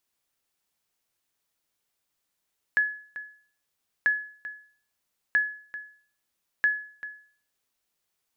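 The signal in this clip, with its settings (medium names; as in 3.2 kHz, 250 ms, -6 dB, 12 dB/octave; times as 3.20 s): sonar ping 1.7 kHz, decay 0.48 s, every 1.29 s, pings 4, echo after 0.39 s, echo -15 dB -15.5 dBFS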